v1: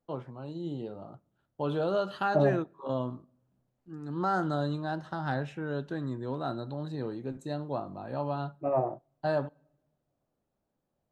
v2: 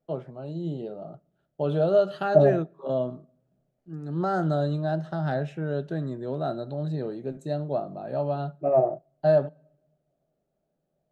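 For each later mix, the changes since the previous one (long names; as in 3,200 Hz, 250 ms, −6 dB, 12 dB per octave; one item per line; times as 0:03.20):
master: add thirty-one-band graphic EQ 100 Hz −10 dB, 160 Hz +11 dB, 400 Hz +6 dB, 630 Hz +11 dB, 1,000 Hz −8 dB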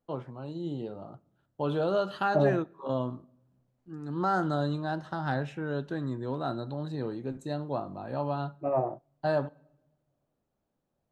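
first voice: send +6.0 dB
master: add thirty-one-band graphic EQ 100 Hz +10 dB, 160 Hz −11 dB, 400 Hz −6 dB, 630 Hz −11 dB, 1,000 Hz +8 dB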